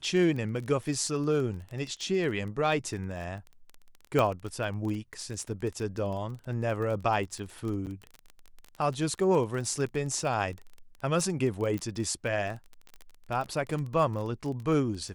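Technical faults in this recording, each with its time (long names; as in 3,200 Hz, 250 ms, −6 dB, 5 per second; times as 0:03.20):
surface crackle 24 per second −34 dBFS
0:04.19: click −13 dBFS
0:07.86–0:07.87: drop-out 8.5 ms
0:11.78: click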